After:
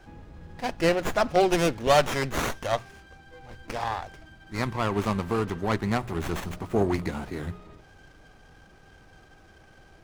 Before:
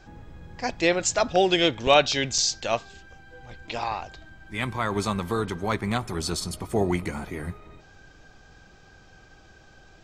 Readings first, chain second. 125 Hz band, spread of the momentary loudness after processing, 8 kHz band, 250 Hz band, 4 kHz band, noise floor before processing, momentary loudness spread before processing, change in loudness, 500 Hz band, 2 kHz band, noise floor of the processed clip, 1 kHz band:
+1.0 dB, 15 LU, −10.0 dB, 0.0 dB, −8.0 dB, −53 dBFS, 15 LU, −2.0 dB, −0.5 dB, −2.5 dB, −54 dBFS, −0.5 dB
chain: mains-hum notches 60/120/180 Hz
windowed peak hold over 9 samples

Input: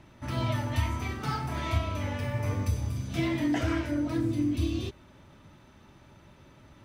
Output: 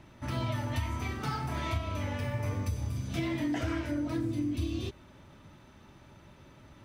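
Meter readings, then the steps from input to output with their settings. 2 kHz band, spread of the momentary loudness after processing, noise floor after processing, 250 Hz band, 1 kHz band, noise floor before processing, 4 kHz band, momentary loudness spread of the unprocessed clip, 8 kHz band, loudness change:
−3.0 dB, 3 LU, −56 dBFS, −3.5 dB, −2.5 dB, −56 dBFS, −3.0 dB, 5 LU, −2.5 dB, −3.0 dB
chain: downward compressor 2.5 to 1, threshold −30 dBFS, peak gain reduction 6.5 dB

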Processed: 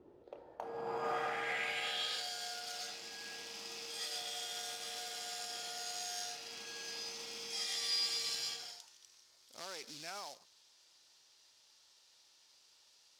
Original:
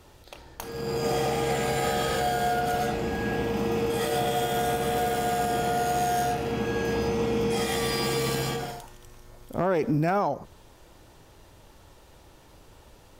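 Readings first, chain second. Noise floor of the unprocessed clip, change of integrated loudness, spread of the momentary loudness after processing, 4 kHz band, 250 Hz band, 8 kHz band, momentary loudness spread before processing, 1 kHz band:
−54 dBFS, −12.5 dB, 13 LU, −3.0 dB, −29.0 dB, −6.0 dB, 6 LU, −17.5 dB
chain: floating-point word with a short mantissa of 2 bits
band-pass filter sweep 330 Hz → 5,000 Hz, 0:00.04–0:02.30
level +1 dB

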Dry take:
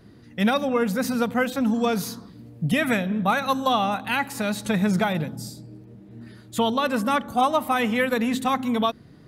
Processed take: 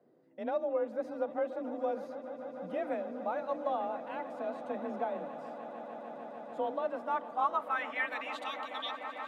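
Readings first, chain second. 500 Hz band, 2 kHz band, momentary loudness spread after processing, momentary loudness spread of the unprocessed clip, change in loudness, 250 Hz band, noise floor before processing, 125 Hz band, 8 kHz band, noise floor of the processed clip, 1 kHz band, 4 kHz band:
−8.0 dB, −13.0 dB, 11 LU, 9 LU, −13.0 dB, −19.5 dB, −49 dBFS, −30.5 dB, below −30 dB, −47 dBFS, −10.5 dB, −16.0 dB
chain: band-pass filter sweep 550 Hz → 3,300 Hz, 0:06.73–0:08.63
frequency shifter +35 Hz
echo that builds up and dies away 149 ms, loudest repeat 8, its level −17 dB
level −6 dB

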